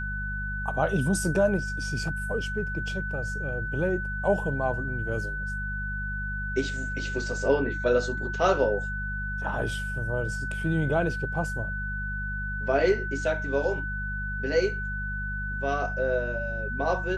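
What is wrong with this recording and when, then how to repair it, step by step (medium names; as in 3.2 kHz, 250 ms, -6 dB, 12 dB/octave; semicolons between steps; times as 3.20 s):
hum 50 Hz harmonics 4 -34 dBFS
whine 1.5 kHz -32 dBFS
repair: de-hum 50 Hz, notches 4; band-stop 1.5 kHz, Q 30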